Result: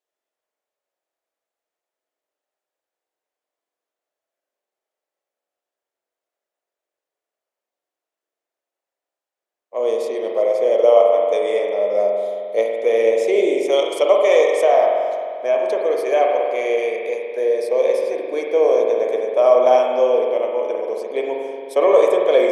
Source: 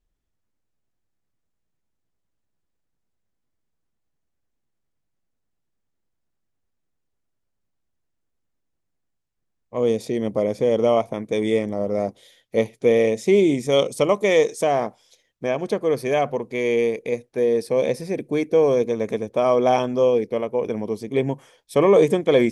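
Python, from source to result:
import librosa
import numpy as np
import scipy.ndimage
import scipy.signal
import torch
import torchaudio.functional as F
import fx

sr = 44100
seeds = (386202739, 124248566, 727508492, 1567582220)

y = scipy.signal.sosfilt(scipy.signal.butter(4, 400.0, 'highpass', fs=sr, output='sos'), x)
y = fx.peak_eq(y, sr, hz=630.0, db=7.0, octaves=0.57)
y = fx.rev_spring(y, sr, rt60_s=2.2, pass_ms=(44,), chirp_ms=75, drr_db=0.0)
y = F.gain(torch.from_numpy(y), -1.5).numpy()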